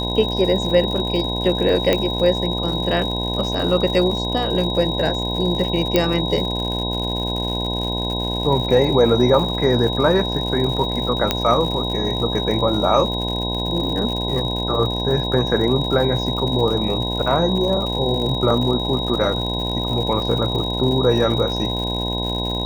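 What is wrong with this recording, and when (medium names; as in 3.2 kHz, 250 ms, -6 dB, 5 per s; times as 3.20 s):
buzz 60 Hz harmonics 17 -25 dBFS
crackle 130 per s -27 dBFS
whine 3.8 kHz -25 dBFS
1.93 s: pop -4 dBFS
5.96 s: pop -2 dBFS
11.31 s: pop -2 dBFS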